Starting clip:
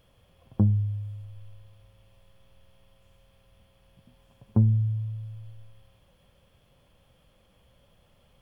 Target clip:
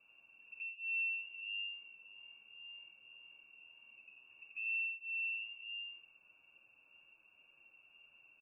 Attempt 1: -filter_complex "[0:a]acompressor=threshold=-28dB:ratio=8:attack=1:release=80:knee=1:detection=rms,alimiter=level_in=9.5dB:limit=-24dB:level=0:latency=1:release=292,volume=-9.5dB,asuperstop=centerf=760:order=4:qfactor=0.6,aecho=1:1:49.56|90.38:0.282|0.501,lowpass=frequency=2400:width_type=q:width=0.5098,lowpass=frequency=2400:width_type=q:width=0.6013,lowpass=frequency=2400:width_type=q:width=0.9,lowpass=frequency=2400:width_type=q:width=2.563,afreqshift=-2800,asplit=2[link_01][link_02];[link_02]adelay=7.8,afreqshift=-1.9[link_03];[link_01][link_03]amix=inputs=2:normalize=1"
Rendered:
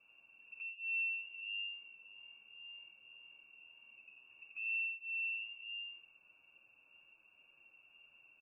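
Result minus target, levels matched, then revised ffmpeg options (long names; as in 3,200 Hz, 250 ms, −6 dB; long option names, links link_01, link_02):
downward compressor: peak gain reduction +15 dB
-filter_complex "[0:a]alimiter=level_in=9.5dB:limit=-24dB:level=0:latency=1:release=292,volume=-9.5dB,asuperstop=centerf=760:order=4:qfactor=0.6,aecho=1:1:49.56|90.38:0.282|0.501,lowpass=frequency=2400:width_type=q:width=0.5098,lowpass=frequency=2400:width_type=q:width=0.6013,lowpass=frequency=2400:width_type=q:width=0.9,lowpass=frequency=2400:width_type=q:width=2.563,afreqshift=-2800,asplit=2[link_01][link_02];[link_02]adelay=7.8,afreqshift=-1.9[link_03];[link_01][link_03]amix=inputs=2:normalize=1"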